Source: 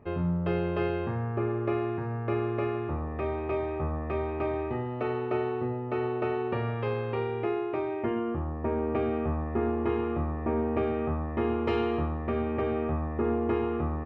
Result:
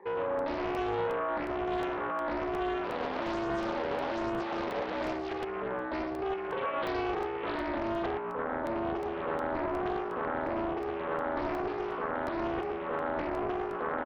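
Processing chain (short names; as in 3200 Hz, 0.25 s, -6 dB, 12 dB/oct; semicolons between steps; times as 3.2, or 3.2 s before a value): moving spectral ripple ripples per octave 1, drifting +1.1 Hz, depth 21 dB; bell 760 Hz -6 dB 0.27 oct; 2.84–5.33 decimation with a swept rate 23×, swing 160% 1.2 Hz; mistuned SSB -54 Hz 490–3500 Hz; compressor, threshold -31 dBFS, peak gain reduction 8 dB; tilt shelf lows +5.5 dB, about 1100 Hz; limiter -29.5 dBFS, peak gain reduction 11 dB; echo 0.113 s -4.5 dB; crackling interface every 0.36 s, samples 64, zero, from 0.39; Doppler distortion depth 0.76 ms; gain +3.5 dB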